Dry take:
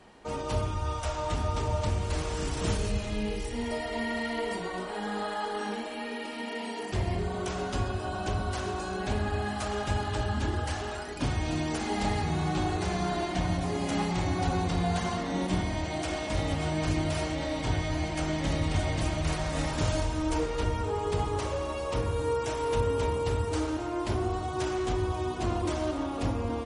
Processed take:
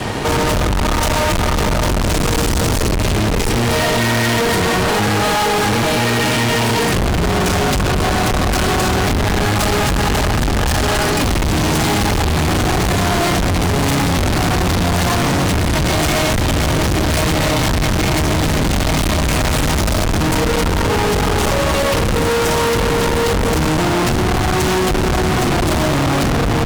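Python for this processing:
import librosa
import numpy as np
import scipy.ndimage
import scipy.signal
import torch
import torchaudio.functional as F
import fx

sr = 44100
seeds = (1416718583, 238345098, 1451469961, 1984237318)

y = fx.octave_divider(x, sr, octaves=1, level_db=2.0)
y = fx.fuzz(y, sr, gain_db=51.0, gate_db=-59.0)
y = F.gain(torch.from_numpy(y), -1.5).numpy()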